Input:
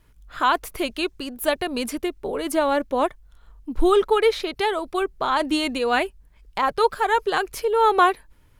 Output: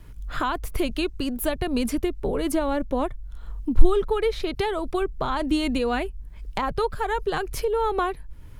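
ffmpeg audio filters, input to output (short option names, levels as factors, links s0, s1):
-filter_complex "[0:a]acrossover=split=160[s0][s1];[s1]acompressor=threshold=0.0126:ratio=2.5[s2];[s0][s2]amix=inputs=2:normalize=0,lowshelf=f=330:g=8,acontrast=62"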